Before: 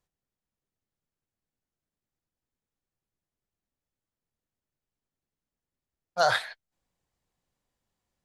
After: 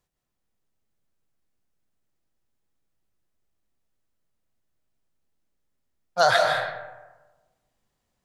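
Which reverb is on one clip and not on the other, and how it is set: digital reverb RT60 1.2 s, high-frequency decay 0.45×, pre-delay 0.11 s, DRR 2.5 dB; gain +4 dB

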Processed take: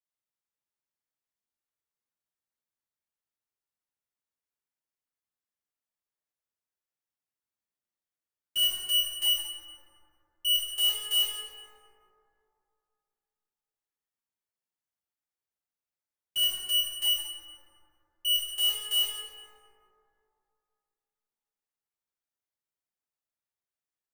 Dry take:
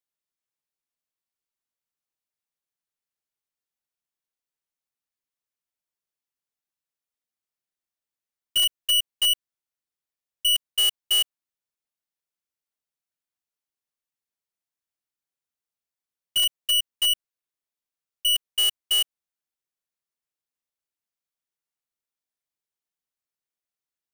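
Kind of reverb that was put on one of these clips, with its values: plate-style reverb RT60 2.7 s, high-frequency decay 0.35×, DRR -7.5 dB; gain -11 dB

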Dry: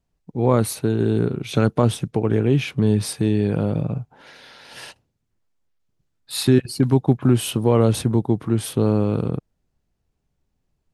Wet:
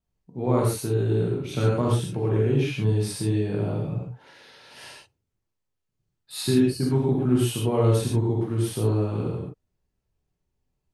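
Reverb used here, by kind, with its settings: non-linear reverb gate 0.16 s flat, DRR -4 dB; gain -10 dB

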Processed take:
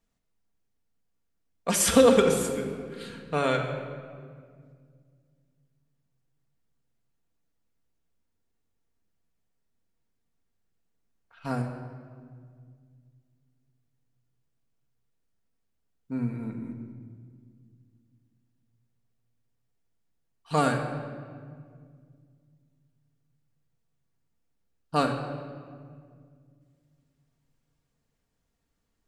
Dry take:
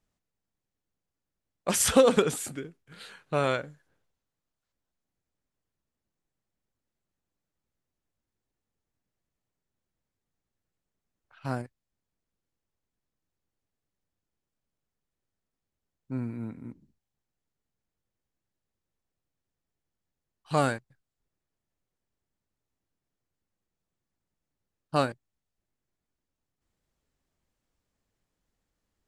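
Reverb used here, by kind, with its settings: shoebox room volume 3500 m³, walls mixed, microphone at 1.7 m

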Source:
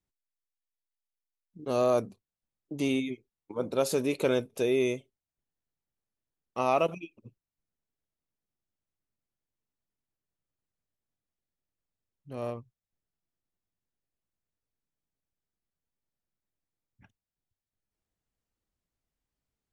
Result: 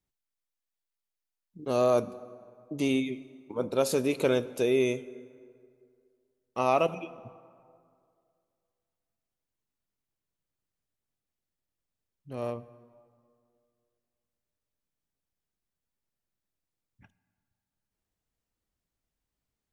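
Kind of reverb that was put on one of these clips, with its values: plate-style reverb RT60 2.3 s, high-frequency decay 0.55×, DRR 16 dB; gain +1 dB

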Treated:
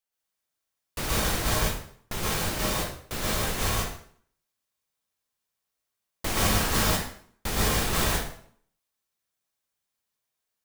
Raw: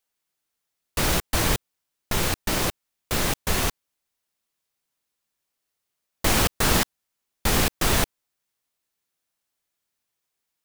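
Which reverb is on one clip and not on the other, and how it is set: plate-style reverb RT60 0.57 s, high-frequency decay 0.85×, pre-delay 0.105 s, DRR -5 dB; gain -8.5 dB

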